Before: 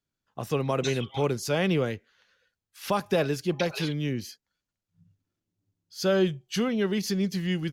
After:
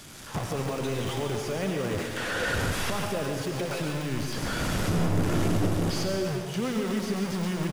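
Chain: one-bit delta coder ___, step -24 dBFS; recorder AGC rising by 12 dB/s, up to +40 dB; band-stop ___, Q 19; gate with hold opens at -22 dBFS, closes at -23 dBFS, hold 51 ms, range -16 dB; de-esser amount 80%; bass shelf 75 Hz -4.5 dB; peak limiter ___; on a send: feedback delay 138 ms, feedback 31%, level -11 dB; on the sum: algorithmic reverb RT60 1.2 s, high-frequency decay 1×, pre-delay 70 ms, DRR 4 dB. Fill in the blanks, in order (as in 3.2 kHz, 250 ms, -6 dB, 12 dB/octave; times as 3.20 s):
64 kbps, 4.2 kHz, -23 dBFS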